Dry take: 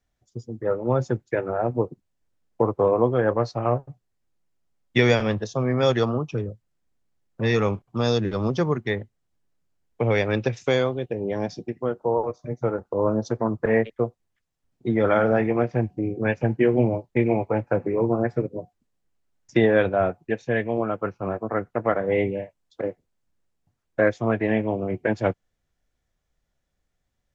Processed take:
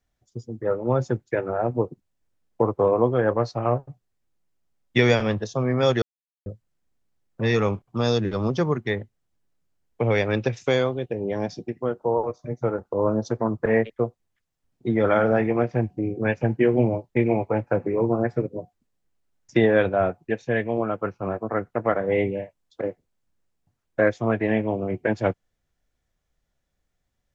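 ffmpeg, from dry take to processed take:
ffmpeg -i in.wav -filter_complex "[0:a]asplit=3[link_01][link_02][link_03];[link_01]atrim=end=6.02,asetpts=PTS-STARTPTS,afade=type=out:start_time=6.016:duration=0.004:curve=hsin[link_04];[link_02]atrim=start=6.02:end=6.46,asetpts=PTS-STARTPTS,volume=0[link_05];[link_03]atrim=start=6.46,asetpts=PTS-STARTPTS,afade=type=in:duration=0.004:curve=hsin[link_06];[link_04][link_05][link_06]concat=n=3:v=0:a=1" out.wav

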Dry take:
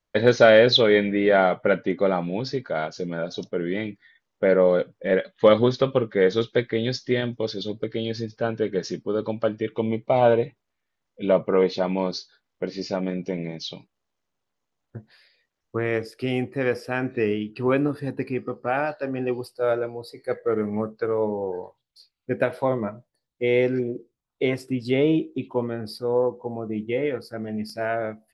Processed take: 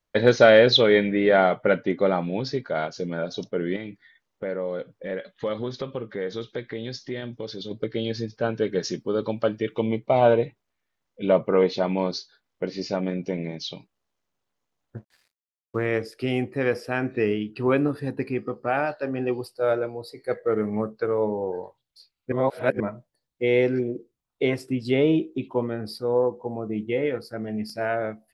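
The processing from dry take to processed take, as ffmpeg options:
ffmpeg -i in.wav -filter_complex "[0:a]asettb=1/sr,asplit=3[link_01][link_02][link_03];[link_01]atrim=end=3.764[link_04];[link_02]atrim=start=3.76:end=7.71,asetpts=PTS-STARTPTS,afade=type=in:duration=0.004:curve=qsin,afade=type=out:start_time=3.946:duration=0.004:curve=qsin,acompressor=threshold=-34dB:ratio=2:attack=3.2:release=140:knee=1:detection=peak[link_05];[link_03]atrim=start=7.706[link_06];[link_04][link_05]acrossfade=duration=0.004:curve1=hsin:curve2=qsin[link_07];[link_07][link_06]acrossfade=duration=0.004:curve1=qsin:curve2=hsin,asettb=1/sr,asplit=3[link_08][link_09][link_10];[link_08]atrim=end=8.534[link_11];[link_09]atrim=start=8.53:end=9.99,asetpts=PTS-STARTPTS,afade=type=in:duration=0.004:curve=qsin,afade=type=out:start_time=1.456:duration=0.004:curve=qsin,highshelf=frequency=4000:gain=6[link_12];[link_10]atrim=start=9.986[link_13];[link_11][link_12]acrossfade=duration=0.004:curve1=hsin:curve2=qsin[link_14];[link_14][link_13]acrossfade=duration=0.004:curve1=qsin:curve2=hsin,asettb=1/sr,asplit=3[link_15][link_16][link_17];[link_15]atrim=end=14.974[link_18];[link_16]atrim=start=14.97:end=15.86,asetpts=PTS-STARTPTS,afade=type=in:duration=0.004:curve=qsin,afade=type=out:start_time=0.886:duration=0.004:curve=qsin,aeval=exprs='sgn(val(0))*max(abs(val(0))-0.00168,0)':channel_layout=same[link_19];[link_17]atrim=start=15.856[link_20];[link_18][link_19]acrossfade=duration=0.004:curve1=hsin:curve2=qsin[link_21];[link_21][link_20]acrossfade=duration=0.004:curve1=qsin:curve2=hsin,asplit=3[link_22][link_23][link_24];[link_22]atrim=end=22.322[link_25];[link_23]atrim=start=22.318:end=22.802,asetpts=PTS-STARTPTS,areverse[link_26];[link_24]atrim=start=22.798[link_27];[link_25][link_26]acrossfade=duration=0.004:curve1=hsin:curve2=hsin[link_28];[link_28][link_27]acrossfade=duration=0.004:curve1=hsin:curve2=hsin" out.wav

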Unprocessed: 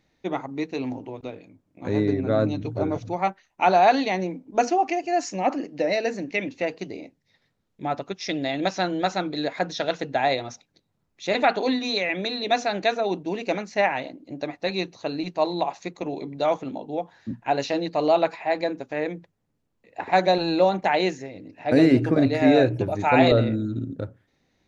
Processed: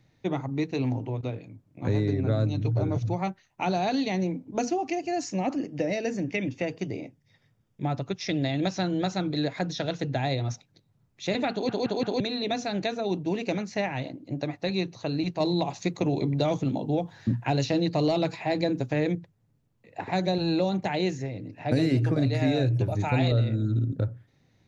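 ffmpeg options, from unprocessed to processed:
ffmpeg -i in.wav -filter_complex "[0:a]asettb=1/sr,asplit=3[link_01][link_02][link_03];[link_01]atrim=end=5.554[link_04];[link_02]atrim=start=5.55:end=7.84,asetpts=PTS-STARTPTS,afade=type=in:duration=0.004:curve=qsin,afade=type=out:start_time=2.286:duration=0.004:curve=qsin,asuperstop=centerf=4100:order=4:qfactor=7.4[link_05];[link_03]atrim=start=7.836[link_06];[link_04][link_05]acrossfade=duration=0.004:curve1=hsin:curve2=qsin[link_07];[link_07][link_06]acrossfade=duration=0.004:curve1=qsin:curve2=hsin,asettb=1/sr,asplit=3[link_08][link_09][link_10];[link_08]atrim=end=15.404[link_11];[link_09]atrim=start=15.4:end=19.15,asetpts=PTS-STARTPTS,afade=type=in:duration=0.004:curve=qsin,afade=type=out:start_time=3.746:duration=0.004:curve=qsin,acontrast=70[link_12];[link_10]atrim=start=19.146[link_13];[link_11][link_12]acrossfade=duration=0.004:curve1=hsin:curve2=qsin[link_14];[link_14][link_13]acrossfade=duration=0.004:curve1=qsin:curve2=hsin,asplit=5[link_15][link_16][link_17][link_18][link_19];[link_15]atrim=end=11.692[link_20];[link_16]atrim=start=11.518:end=11.692[link_21];[link_17]atrim=start=11.518:end=11.692[link_22];[link_18]atrim=start=11.518:end=11.692[link_23];[link_19]atrim=start=12.198[link_24];[link_20][link_21]acrossfade=duration=0.004:curve1=hsin:curve2=hsin[link_25];[link_25][link_22]acrossfade=duration=0.004:curve1=hsin:curve2=hsin[link_26];[link_26][link_23]acrossfade=duration=0.004:curve1=hsin:curve2=hsin[link_27];[link_27][link_24]acrossfade=duration=0.004:curve1=hsin:curve2=hsin,equalizer=frequency=120:width_type=o:width=0.8:gain=14.5,acrossover=split=380|3200[link_28][link_29][link_30];[link_28]acompressor=threshold=-24dB:ratio=4[link_31];[link_29]acompressor=threshold=-32dB:ratio=4[link_32];[link_30]acompressor=threshold=-36dB:ratio=4[link_33];[link_31][link_32][link_33]amix=inputs=3:normalize=0" out.wav

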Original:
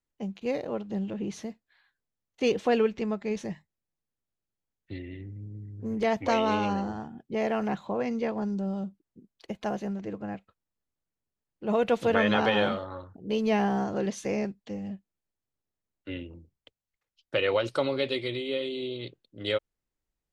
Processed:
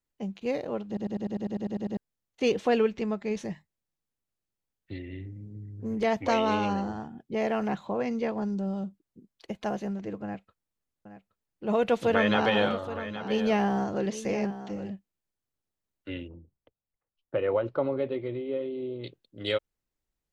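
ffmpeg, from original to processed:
ffmpeg -i in.wav -filter_complex "[0:a]asettb=1/sr,asplit=3[link_01][link_02][link_03];[link_01]atrim=end=5.054[link_04];[link_02]atrim=start=5.05:end=5.56,asetpts=PTS-STARTPTS,afade=type=in:duration=0.004:curve=qsin,afade=type=out:start_time=0.506:duration=0.004:curve=qsin,asplit=2[link_05][link_06];[link_06]adelay=43,volume=-8.5dB[link_07];[link_05][link_07]amix=inputs=2:normalize=0,atrim=end_sample=22491[link_08];[link_03]atrim=start=5.556[link_09];[link_04][link_08]acrossfade=duration=0.004:curve1=hsin:curve2=qsin[link_10];[link_10][link_09]acrossfade=duration=0.004:curve1=qsin:curve2=hsin,asettb=1/sr,asplit=3[link_11][link_12][link_13];[link_11]atrim=end=10.234[link_14];[link_12]atrim=start=10.23:end=14.9,asetpts=PTS-STARTPTS,afade=type=in:duration=0.004:curve=qsin,afade=type=out:start_time=4.666:duration=0.004:curve=qsin,aecho=1:1:822:0.237,atrim=end_sample=205947[link_15];[link_13]atrim=start=14.896[link_16];[link_14][link_15]acrossfade=duration=0.004:curve1=hsin:curve2=qsin[link_17];[link_17][link_16]acrossfade=duration=0.004:curve1=qsin:curve2=hsin,asettb=1/sr,asplit=3[link_18][link_19][link_20];[link_18]atrim=end=16.284[link_21];[link_19]atrim=start=16.28:end=19.04,asetpts=PTS-STARTPTS,afade=type=in:duration=0.004:curve=qsin,afade=type=out:start_time=2.756:duration=0.004:curve=qsin,lowpass=1100[link_22];[link_20]atrim=start=19.036[link_23];[link_21][link_22]acrossfade=duration=0.004:curve1=hsin:curve2=qsin[link_24];[link_24][link_23]acrossfade=duration=0.004:curve1=qsin:curve2=hsin,asplit=12[link_25][link_26][link_27][link_28][link_29][link_30][link_31][link_32][link_33][link_34][link_35][link_36];[link_25]atrim=end=0.972[link_37];[link_26]atrim=start=0.868:end=0.972[link_38];[link_27]atrim=start=0.868:end=0.972[link_39];[link_28]atrim=start=0.868:end=0.972[link_40];[link_29]atrim=start=0.868:end=0.972[link_41];[link_30]atrim=start=0.868:end=0.972[link_42];[link_31]atrim=start=0.868:end=0.972[link_43];[link_32]atrim=start=0.868:end=0.972[link_44];[link_33]atrim=start=0.868:end=0.972[link_45];[link_34]atrim=start=0.868:end=0.972[link_46];[link_35]atrim=start=0.868:end=0.972[link_47];[link_36]atrim=start=1.968[link_48];[link_37][link_38]acrossfade=duration=0.004:curve1=hsin:curve2=hsin[link_49];[link_49][link_39]acrossfade=duration=0.004:curve1=hsin:curve2=hsin[link_50];[link_50][link_40]acrossfade=duration=0.004:curve1=hsin:curve2=hsin[link_51];[link_51][link_41]acrossfade=duration=0.004:curve1=hsin:curve2=hsin[link_52];[link_52][link_42]acrossfade=duration=0.004:curve1=hsin:curve2=hsin[link_53];[link_53][link_43]acrossfade=duration=0.004:curve1=hsin:curve2=hsin[link_54];[link_54][link_44]acrossfade=duration=0.004:curve1=hsin:curve2=hsin[link_55];[link_55][link_45]acrossfade=duration=0.004:curve1=hsin:curve2=hsin[link_56];[link_56][link_46]acrossfade=duration=0.004:curve1=hsin:curve2=hsin[link_57];[link_57][link_47]acrossfade=duration=0.004:curve1=hsin:curve2=hsin[link_58];[link_58][link_48]acrossfade=duration=0.004:curve1=hsin:curve2=hsin" out.wav

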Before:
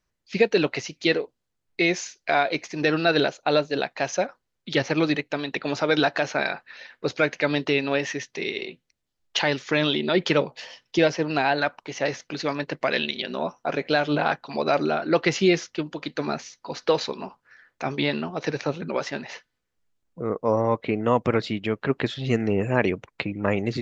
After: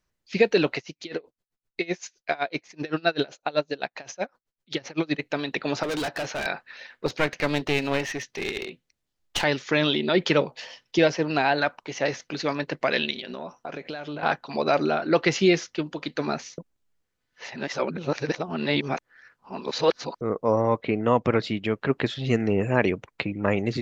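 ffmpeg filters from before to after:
ffmpeg -i in.wav -filter_complex "[0:a]asplit=3[link_01][link_02][link_03];[link_01]afade=type=out:start_time=0.76:duration=0.02[link_04];[link_02]aeval=exprs='val(0)*pow(10,-26*(0.5-0.5*cos(2*PI*7.8*n/s))/20)':channel_layout=same,afade=type=in:start_time=0.76:duration=0.02,afade=type=out:start_time=5.18:duration=0.02[link_05];[link_03]afade=type=in:start_time=5.18:duration=0.02[link_06];[link_04][link_05][link_06]amix=inputs=3:normalize=0,asettb=1/sr,asplit=3[link_07][link_08][link_09];[link_07]atrim=end=5.834[link_10];[link_08]atrim=start=5.83:end=6.46,asetpts=PTS-STARTPTS,afade=type=in:duration=0.004:curve=qsin,afade=type=out:start_time=0.626:duration=0.004:curve=qsin,asoftclip=type=hard:threshold=-26dB[link_11];[link_09]atrim=start=6.456[link_12];[link_10][link_11]acrossfade=duration=0.004:curve1=hsin:curve2=qsin[link_13];[link_13][link_12]acrossfade=duration=0.004:curve1=qsin:curve2=hsin,asettb=1/sr,asplit=3[link_14][link_15][link_16];[link_14]atrim=end=7.064[link_17];[link_15]atrim=start=7.06:end=9.44,asetpts=PTS-STARTPTS,afade=type=in:duration=0.004:curve=qsin,afade=type=out:start_time=2.376:duration=0.004:curve=qsin,aeval=exprs='clip(val(0),-1,0.0316)':channel_layout=same[link_18];[link_16]atrim=start=9.436[link_19];[link_17][link_18]acrossfade=duration=0.004:curve1=hsin:curve2=qsin[link_20];[link_20][link_19]acrossfade=duration=0.004:curve1=qsin:curve2=hsin,asettb=1/sr,asplit=3[link_21][link_22][link_23];[link_21]atrim=end=13.184[link_24];[link_22]atrim=start=13.18:end=14.23,asetpts=PTS-STARTPTS,afade=type=in:duration=0.004:curve=qsin,afade=type=out:start_time=1.046:duration=0.004:curve=qsin,acompressor=threshold=-31dB:ratio=6:attack=3.2:release=140:knee=1:detection=peak[link_25];[link_23]atrim=start=14.226[link_26];[link_24][link_25]acrossfade=duration=0.004:curve1=hsin:curve2=qsin[link_27];[link_27][link_26]acrossfade=duration=0.004:curve1=qsin:curve2=hsin,asettb=1/sr,asplit=3[link_28][link_29][link_30];[link_28]atrim=end=20.824[link_31];[link_29]atrim=start=20.82:end=21.45,asetpts=PTS-STARTPTS,afade=type=in:duration=0.004:curve=qsin,afade=type=out:start_time=0.626:duration=0.004:curve=qsin,lowpass=6600[link_32];[link_30]atrim=start=21.446[link_33];[link_31][link_32]acrossfade=duration=0.004:curve1=hsin:curve2=qsin[link_34];[link_34][link_33]acrossfade=duration=0.004:curve1=qsin:curve2=hsin,asplit=3[link_35][link_36][link_37];[link_35]atrim=end=16.582[link_38];[link_36]atrim=start=16.578:end=20.212,asetpts=PTS-STARTPTS,areverse[link_39];[link_37]atrim=start=20.208[link_40];[link_38][link_39]acrossfade=duration=0.004:curve1=hsin:curve2=hsin[link_41];[link_41][link_40]acrossfade=duration=0.004:curve1=hsin:curve2=hsin" out.wav

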